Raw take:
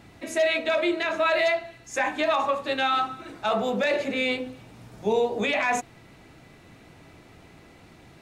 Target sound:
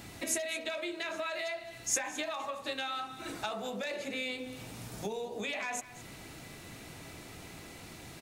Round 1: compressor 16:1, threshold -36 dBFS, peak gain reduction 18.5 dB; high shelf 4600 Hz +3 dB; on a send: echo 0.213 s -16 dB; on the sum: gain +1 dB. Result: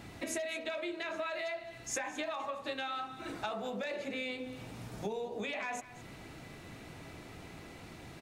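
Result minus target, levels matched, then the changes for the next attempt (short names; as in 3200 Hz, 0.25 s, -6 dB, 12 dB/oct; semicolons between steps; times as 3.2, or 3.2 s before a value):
8000 Hz band -5.0 dB
change: high shelf 4600 Hz +14.5 dB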